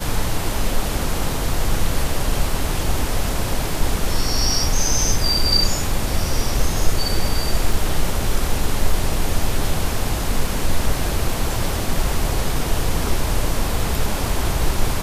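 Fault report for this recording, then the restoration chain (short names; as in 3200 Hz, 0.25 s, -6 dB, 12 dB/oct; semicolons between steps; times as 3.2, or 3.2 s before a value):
7.73 gap 3.7 ms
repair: interpolate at 7.73, 3.7 ms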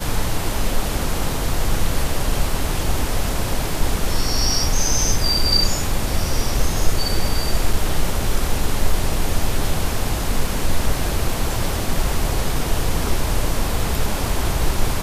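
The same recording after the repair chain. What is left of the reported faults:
none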